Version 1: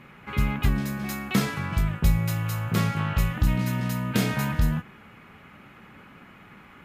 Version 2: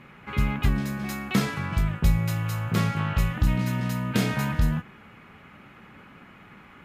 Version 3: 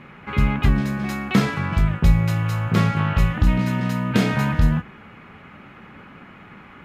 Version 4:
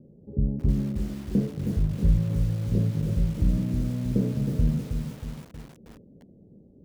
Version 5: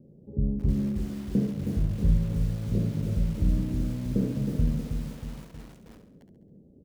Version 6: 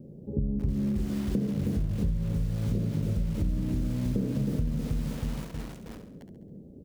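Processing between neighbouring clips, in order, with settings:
high-shelf EQ 11,000 Hz −6.5 dB
low-pass filter 3,600 Hz 6 dB per octave; mains-hum notches 60/120 Hz; level +6 dB
Butterworth low-pass 560 Hz 48 dB per octave; feedback echo at a low word length 317 ms, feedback 55%, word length 6 bits, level −6.5 dB; level −6 dB
repeating echo 68 ms, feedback 51%, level −8.5 dB; level −2 dB
in parallel at −2 dB: brickwall limiter −23 dBFS, peak gain reduction 11.5 dB; on the sum: downward compressor, threshold −27 dBFS, peak gain reduction 12.5 dB; level +2 dB

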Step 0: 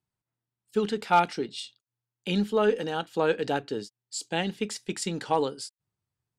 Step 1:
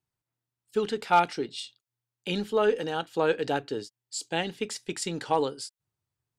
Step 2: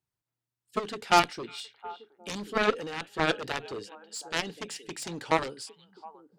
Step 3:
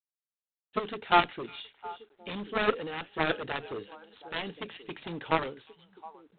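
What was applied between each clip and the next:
parametric band 200 Hz −7 dB 0.31 octaves
echo through a band-pass that steps 360 ms, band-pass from 2,600 Hz, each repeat −1.4 octaves, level −12 dB; harmonic generator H 7 −12 dB, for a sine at −9 dBFS
G.726 24 kbit/s 8,000 Hz

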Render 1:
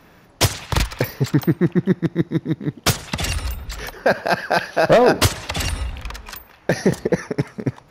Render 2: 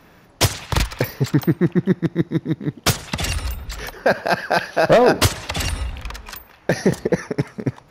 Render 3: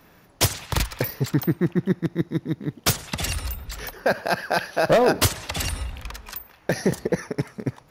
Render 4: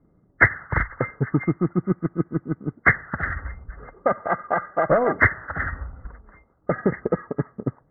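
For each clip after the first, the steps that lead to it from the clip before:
no processing that can be heard
high-shelf EQ 9,800 Hz +9.5 dB; hard clipping −4 dBFS, distortion −41 dB; level −4.5 dB
hearing-aid frequency compression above 1,100 Hz 4 to 1; low-pass that shuts in the quiet parts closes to 360 Hz, open at −13.5 dBFS; transient designer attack +5 dB, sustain −2 dB; level −3.5 dB

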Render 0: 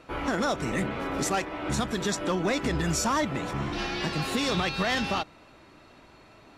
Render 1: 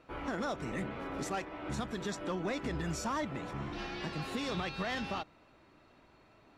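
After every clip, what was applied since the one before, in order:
high-shelf EQ 4,400 Hz −7 dB
level −8.5 dB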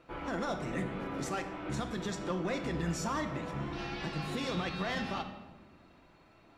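rectangular room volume 820 cubic metres, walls mixed, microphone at 0.79 metres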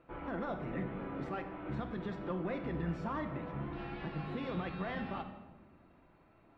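high-frequency loss of the air 440 metres
level −2 dB

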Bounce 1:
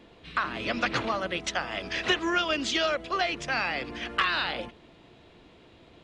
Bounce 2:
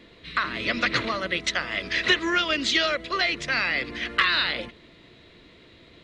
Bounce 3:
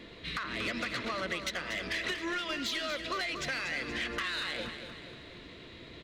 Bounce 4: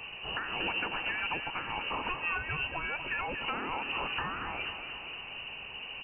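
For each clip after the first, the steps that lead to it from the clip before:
thirty-one-band graphic EQ 800 Hz −11 dB, 2,000 Hz +8 dB, 4,000 Hz +8 dB; level +2 dB
downward compressor 16 to 1, threshold −31 dBFS, peak gain reduction 16.5 dB; soft clipping −29.5 dBFS, distortion −14 dB; on a send: repeating echo 237 ms, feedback 50%, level −9 dB; on the sum: level +2 dB
sub-octave generator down 1 octave, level +4 dB; in parallel at −5 dB: wrap-around overflow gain 38.5 dB; on the sum: voice inversion scrambler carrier 2,900 Hz

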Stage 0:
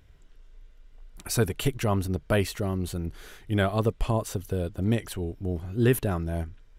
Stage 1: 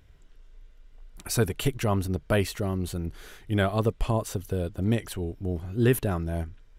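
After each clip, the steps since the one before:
no processing that can be heard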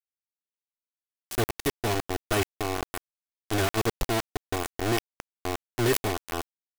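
lower of the sound and its delayed copy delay 2.7 ms
bit reduction 4 bits
level that may fall only so fast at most 94 dB per second
level −2.5 dB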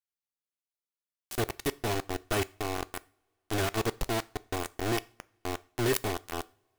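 convolution reverb, pre-delay 3 ms, DRR 17 dB
level −3.5 dB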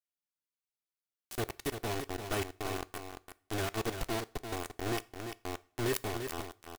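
single-tap delay 343 ms −7.5 dB
level −5 dB

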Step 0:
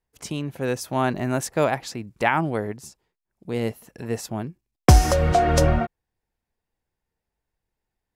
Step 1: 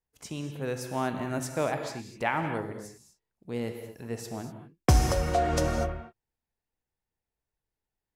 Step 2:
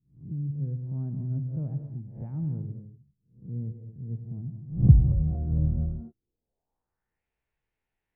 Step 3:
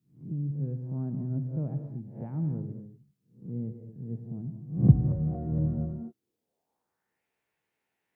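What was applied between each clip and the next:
reverb whose tail is shaped and stops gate 270 ms flat, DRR 5.5 dB; level −8 dB
peak hold with a rise ahead of every peak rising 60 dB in 0.40 s; low-pass filter sweep 140 Hz → 2,400 Hz, 0:05.80–0:07.24; level +1 dB
high-pass filter 190 Hz 12 dB per octave; level +5.5 dB

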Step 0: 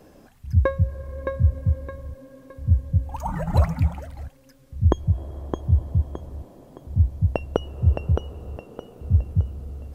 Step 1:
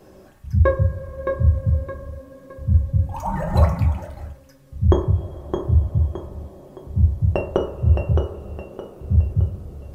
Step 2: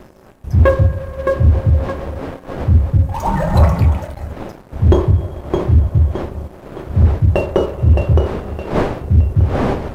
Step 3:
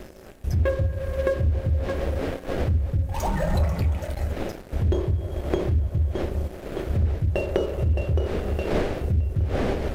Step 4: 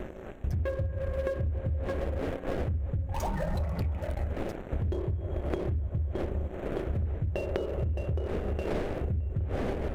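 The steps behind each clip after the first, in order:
convolution reverb RT60 0.55 s, pre-delay 3 ms, DRR −0.5 dB
wind on the microphone 540 Hz −35 dBFS; leveller curve on the samples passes 2
downward compressor 6 to 1, threshold −20 dBFS, peak gain reduction 13 dB; octave-band graphic EQ 125/250/1,000 Hz −7/−4/−10 dB; level +3.5 dB
adaptive Wiener filter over 9 samples; downward compressor 6 to 1, threshold −31 dBFS, peak gain reduction 13 dB; level +3 dB

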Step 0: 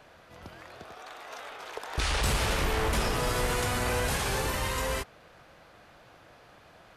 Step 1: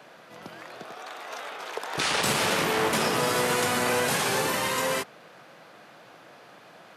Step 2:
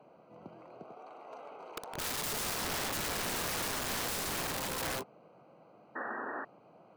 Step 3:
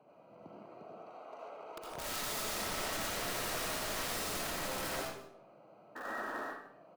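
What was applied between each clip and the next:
high-pass filter 150 Hz 24 dB per octave; level +5 dB
adaptive Wiener filter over 25 samples; wrap-around overflow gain 25.5 dB; sound drawn into the spectrogram noise, 0:05.95–0:06.45, 210–1,900 Hz −34 dBFS; level −5 dB
in parallel at −12 dB: wrap-around overflow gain 32.5 dB; on the sum: single-tap delay 152 ms −17.5 dB; convolution reverb RT60 0.55 s, pre-delay 40 ms, DRR −3.5 dB; level −7.5 dB

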